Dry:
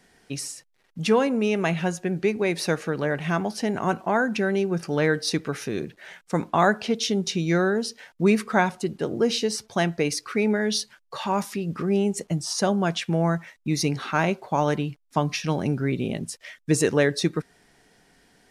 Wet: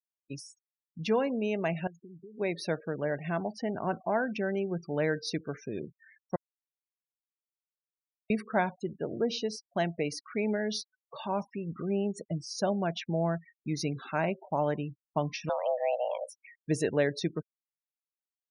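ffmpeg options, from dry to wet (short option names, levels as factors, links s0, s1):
-filter_complex "[0:a]asettb=1/sr,asplit=3[s0][s1][s2];[s0]atrim=end=1.874[s3];[s1]atrim=start=1.87:end=2.38,asetpts=PTS-STARTPTS,afade=t=in:d=0.004:c=qsin,afade=t=out:st=0.506:d=0.004:c=qsin,acompressor=threshold=0.0126:ratio=6:attack=3.2:release=140:knee=1:detection=peak[s4];[s2]atrim=start=2.376[s5];[s3][s4]acrossfade=d=0.004:c1=hsin:c2=qsin[s6];[s6][s5]acrossfade=d=0.004:c1=qsin:c2=hsin,asettb=1/sr,asplit=3[s7][s8][s9];[s7]atrim=end=15.494[s10];[s8]atrim=start=15.49:end=16.47,asetpts=PTS-STARTPTS,afade=t=in:d=0.004:c=qsin,afade=t=out:st=0.976:d=0.004:c=qsin,afreqshift=370[s11];[s9]atrim=start=16.466[s12];[s10][s11]acrossfade=d=0.004:c1=hsin:c2=qsin[s13];[s13][s12]acrossfade=d=0.004:c1=qsin:c2=hsin,asplit=3[s14][s15][s16];[s14]atrim=end=6.36,asetpts=PTS-STARTPTS,afade=t=out:st=6.356:d=0.004:c=hsin[s17];[s15]atrim=start=6.36:end=8.3,asetpts=PTS-STARTPTS,volume=0[s18];[s16]atrim=start=8.3,asetpts=PTS-STARTPTS,afade=t=in:d=0.004:c=hsin[s19];[s17][s18][s19]concat=n=3:v=0:a=1,afftdn=nr=13:nf=-36,afftfilt=real='re*gte(hypot(re,im),0.0141)':imag='im*gte(hypot(re,im),0.0141)':win_size=1024:overlap=0.75,equalizer=f=630:t=o:w=0.33:g=6,equalizer=f=1250:t=o:w=0.33:g=-4,equalizer=f=8000:t=o:w=0.33:g=-12,volume=0.398"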